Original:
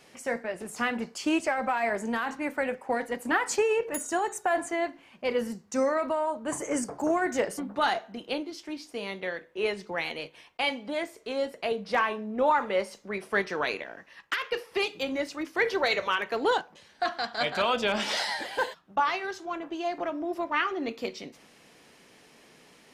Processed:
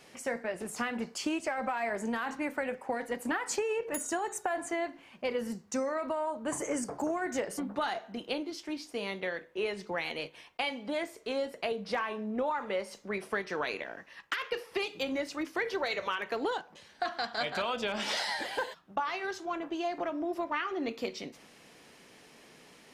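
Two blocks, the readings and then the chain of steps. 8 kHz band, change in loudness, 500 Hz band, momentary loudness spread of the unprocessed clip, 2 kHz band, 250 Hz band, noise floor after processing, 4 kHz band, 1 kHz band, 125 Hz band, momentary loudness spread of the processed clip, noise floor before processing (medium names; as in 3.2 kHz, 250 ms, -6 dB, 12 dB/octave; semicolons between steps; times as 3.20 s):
-2.0 dB, -5.0 dB, -5.0 dB, 9 LU, -5.5 dB, -3.5 dB, -57 dBFS, -4.5 dB, -6.0 dB, -2.5 dB, 5 LU, -57 dBFS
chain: compression, threshold -29 dBFS, peak gain reduction 9.5 dB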